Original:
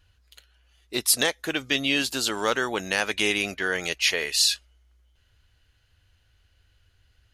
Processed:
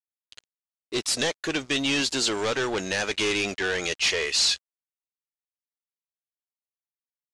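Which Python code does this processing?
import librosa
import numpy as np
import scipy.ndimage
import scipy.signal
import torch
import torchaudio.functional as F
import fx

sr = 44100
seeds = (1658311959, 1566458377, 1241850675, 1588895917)

y = fx.peak_eq(x, sr, hz=380.0, db=5.0, octaves=1.3)
y = fx.leveller(y, sr, passes=2)
y = 10.0 ** (-16.5 / 20.0) * np.tanh(y / 10.0 ** (-16.5 / 20.0))
y = fx.high_shelf(y, sr, hz=2000.0, db=5.5)
y = fx.quant_dither(y, sr, seeds[0], bits=8, dither='none')
y = scipy.signal.sosfilt(scipy.signal.butter(4, 7900.0, 'lowpass', fs=sr, output='sos'), y)
y = y * 10.0 ** (-6.0 / 20.0)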